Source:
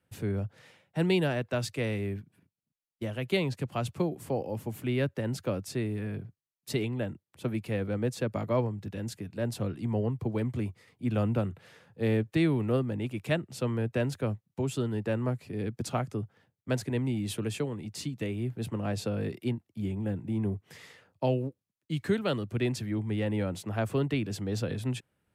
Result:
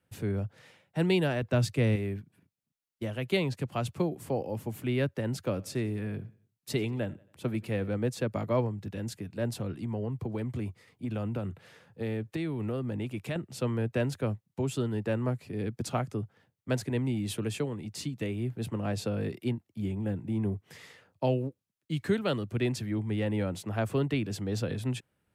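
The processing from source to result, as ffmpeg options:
-filter_complex "[0:a]asettb=1/sr,asplit=3[a][b][c];[a]atrim=end=1.424[d];[b]atrim=start=1.42:end=1.96,asetpts=PTS-STARTPTS,afade=t=in:d=0.004:c=qsin,afade=t=out:st=0.536:d=0.004:c=qsin,equalizer=f=120:t=o:w=2.9:g=8[e];[c]atrim=start=1.956[f];[d][e]acrossfade=d=0.004:c1=hsin:c2=qsin[g];[g][f]acrossfade=d=0.004:c1=qsin:c2=hsin,asettb=1/sr,asplit=3[h][i][j];[h]atrim=end=5.384[k];[i]atrim=start=5.38:end=7.9,asetpts=PTS-STARTPTS,afade=t=in:d=0.004:c=qsin,afade=t=out:st=2.516:d=0.004:c=qsin,aecho=1:1:91|182|273:0.0708|0.0311|0.0137,atrim=end_sample=111132[l];[j]atrim=start=7.896[m];[k][l]acrossfade=d=0.004:c1=hsin:c2=qsin[n];[n][m]acrossfade=d=0.004:c1=qsin:c2=hsin,asettb=1/sr,asplit=3[o][p][q];[o]atrim=end=9.544[r];[p]atrim=start=9.54:end=13.36,asetpts=PTS-STARTPTS,afade=t=in:d=0.004:c=qsin,afade=t=out:st=3.816:d=0.004:c=qsin,acompressor=threshold=-29dB:ratio=6:attack=3.2:release=140:knee=1:detection=peak[s];[q]atrim=start=13.356[t];[r][s]acrossfade=d=0.004:c1=hsin:c2=qsin[u];[u][t]acrossfade=d=0.004:c1=qsin:c2=hsin"

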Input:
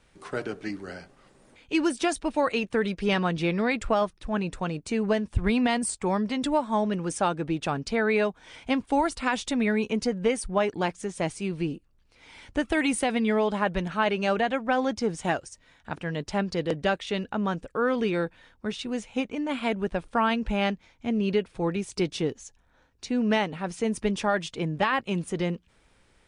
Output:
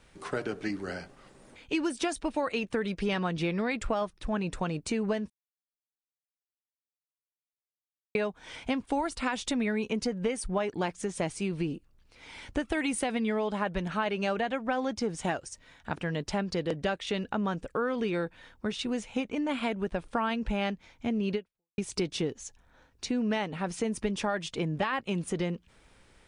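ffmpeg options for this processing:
-filter_complex "[0:a]asplit=4[a][b][c][d];[a]atrim=end=5.3,asetpts=PTS-STARTPTS,afade=t=out:st=5.296:d=0.004:c=hsin[e];[b]atrim=start=5.3:end=8.15,asetpts=PTS-STARTPTS,volume=0[f];[c]atrim=start=8.15:end=21.78,asetpts=PTS-STARTPTS,afade=t=in:d=0.004:c=hsin,afade=t=out:st=13.2:d=0.43:c=exp[g];[d]atrim=start=21.78,asetpts=PTS-STARTPTS,afade=t=in:d=0.004:c=hsin[h];[e][f][g][h]concat=n=4:v=0:a=1,acompressor=threshold=-31dB:ratio=3,volume=2.5dB"

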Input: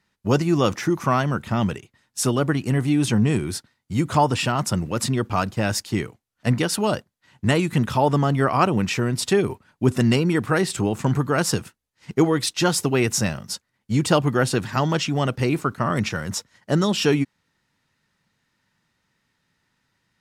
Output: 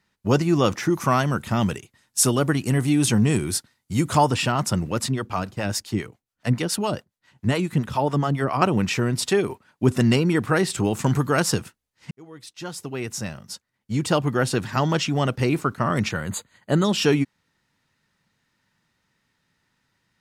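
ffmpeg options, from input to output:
-filter_complex "[0:a]asettb=1/sr,asplit=3[a][b][c];[a]atrim=end=0.934[d];[b]atrim=start=0.93:end=4.31,asetpts=PTS-STARTPTS,afade=t=in:d=0.004:c=qsin,afade=t=out:st=3.376:d=0.004:c=qsin,equalizer=f=11k:w=0.46:g=8[e];[c]atrim=start=4.306[f];[d][e]acrossfade=d=0.004:c1=hsin:c2=qsin[g];[g][f]acrossfade=d=0.004:c1=qsin:c2=hsin,asettb=1/sr,asplit=3[h][i][j];[h]atrim=end=4.994[k];[i]atrim=start=4.99:end=8.62,asetpts=PTS-STARTPTS,afade=t=in:d=0.004:c=qsin,afade=t=out:st=3.626:d=0.004:c=qsin,acrossover=split=520[l][m];[l]aeval=exprs='val(0)*(1-0.7/2+0.7/2*cos(2*PI*7.2*n/s))':c=same[n];[m]aeval=exprs='val(0)*(1-0.7/2-0.7/2*cos(2*PI*7.2*n/s))':c=same[o];[n][o]amix=inputs=2:normalize=0[p];[j]atrim=start=8.616[q];[k][p]acrossfade=d=0.004:c1=hsin:c2=qsin[r];[r][q]acrossfade=d=0.004:c1=qsin:c2=hsin,asettb=1/sr,asplit=3[s][t][u];[s]atrim=end=9.274[v];[t]atrim=start=9.27:end=9.83,asetpts=PTS-STARTPTS,afade=t=in:d=0.004:c=qsin,afade=t=out:st=0.556:d=0.004:c=qsin,lowshelf=f=140:g=-10.5[w];[u]atrim=start=9.826[x];[v][w]acrossfade=d=0.004:c1=hsin:c2=qsin[y];[y][x]acrossfade=d=0.004:c1=qsin:c2=hsin,asettb=1/sr,asplit=3[z][aa][ab];[z]atrim=end=10.844[ac];[aa]atrim=start=10.84:end=11.4,asetpts=PTS-STARTPTS,afade=t=in:d=0.004:c=qsin,afade=t=out:st=0.556:d=0.004:c=qsin,highshelf=f=3.5k:g=7[ad];[ab]atrim=start=11.396[ae];[ac][ad]acrossfade=d=0.004:c1=hsin:c2=qsin[af];[af][ae]acrossfade=d=0.004:c1=qsin:c2=hsin,asettb=1/sr,asplit=3[ag][ah][ai];[ag]atrim=end=16.114[aj];[ah]atrim=start=16.11:end=16.85,asetpts=PTS-STARTPTS,afade=t=in:d=0.004:c=qsin,afade=t=out:st=0.736:d=0.004:c=qsin,asuperstop=centerf=5500:order=20:qfactor=4[ak];[ai]atrim=start=16.846[al];[aj][ak]acrossfade=d=0.004:c1=hsin:c2=qsin[am];[am][al]acrossfade=d=0.004:c1=qsin:c2=hsin,asplit=2[an][ao];[an]atrim=end=12.11,asetpts=PTS-STARTPTS,afade=t=out:st=12.106:d=0.004:c=hsin[ap];[ao]atrim=start=12.11,asetpts=PTS-STARTPTS,afade=t=in:d=2.8[aq];[ap][aq]concat=n=2:v=0:a=1"

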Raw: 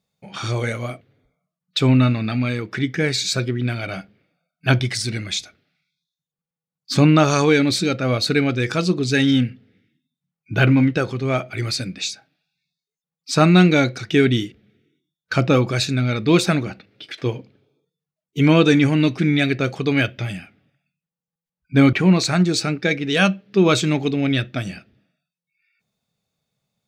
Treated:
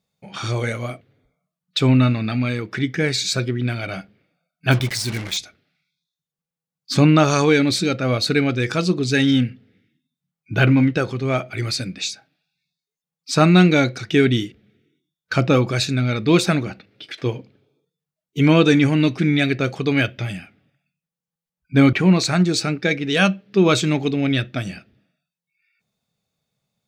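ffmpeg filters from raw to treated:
-filter_complex "[0:a]asettb=1/sr,asplit=3[a][b][c];[a]atrim=end=4.714[d];[b]atrim=start=4.71:end=5.37,asetpts=PTS-STARTPTS,afade=t=in:d=0.004:c=qsin,afade=t=out:st=0.656:d=0.004:c=qsin,acrusher=bits=4:mix=0:aa=0.5[e];[c]atrim=start=5.366[f];[d][e]acrossfade=d=0.004:c1=hsin:c2=qsin[g];[g][f]acrossfade=d=0.004:c1=qsin:c2=hsin"

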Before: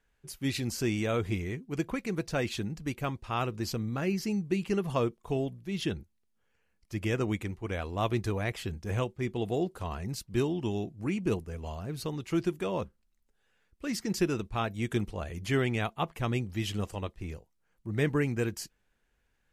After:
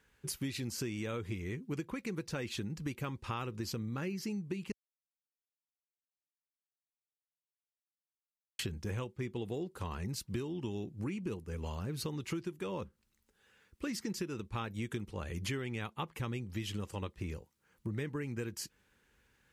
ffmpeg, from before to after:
-filter_complex "[0:a]asplit=3[a][b][c];[a]atrim=end=4.72,asetpts=PTS-STARTPTS,afade=t=out:st=4.716:d=0.004:c=hsin[d];[b]atrim=start=4.72:end=8.59,asetpts=PTS-STARTPTS,volume=0[e];[c]atrim=start=8.59,asetpts=PTS-STARTPTS,afade=t=in:d=0.004:c=hsin[f];[d][e][f]concat=n=3:v=0:a=1,highpass=61,equalizer=f=680:t=o:w=0.21:g=-13.5,acompressor=threshold=-42dB:ratio=12,volume=7dB"

